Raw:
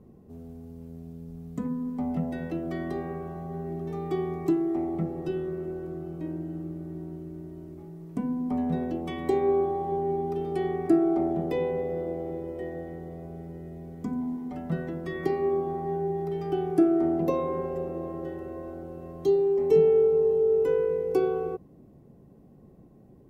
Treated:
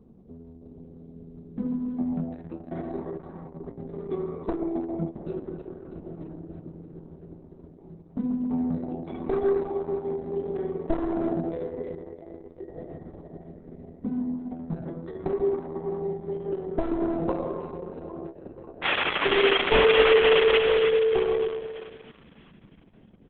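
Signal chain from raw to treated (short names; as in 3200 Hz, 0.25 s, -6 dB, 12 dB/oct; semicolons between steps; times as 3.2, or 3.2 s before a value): one-sided fold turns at -21 dBFS; bell 2700 Hz -11 dB 2.1 oct; comb 4.5 ms, depth 42%; painted sound noise, 18.82–20.59, 260–3500 Hz -26 dBFS; on a send: split-band echo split 1100 Hz, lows 0.135 s, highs 0.322 s, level -7 dB; on the sum: Opus 6 kbps 48000 Hz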